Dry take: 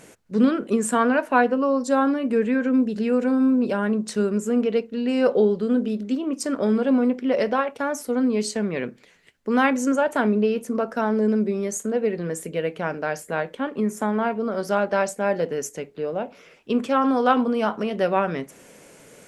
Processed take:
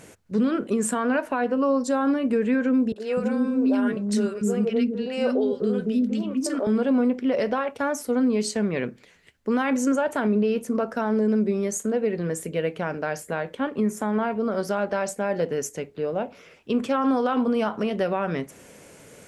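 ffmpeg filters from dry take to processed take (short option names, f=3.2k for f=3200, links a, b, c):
-filter_complex "[0:a]asettb=1/sr,asplit=3[a][b][c];[a]atrim=end=2.924[d];[b]atrim=start=2.92:end=6.67,asetpts=PTS-STARTPTS,afade=t=in:d=0.004:c=qsin,afade=t=out:st=3.746:d=0.004:c=qsin,acrossover=split=360|1200[e][f][g];[g]adelay=40[h];[e]adelay=250[i];[i][f][h]amix=inputs=3:normalize=0,atrim=end_sample=165375[j];[c]atrim=start=6.666[k];[d][j]acrossfade=d=0.004:c1=hsin:c2=qsin[l];[l][k]acrossfade=d=0.004:c1=qsin:c2=hsin,equalizer=f=82:t=o:w=1.1:g=8,alimiter=limit=-14.5dB:level=0:latency=1:release=75"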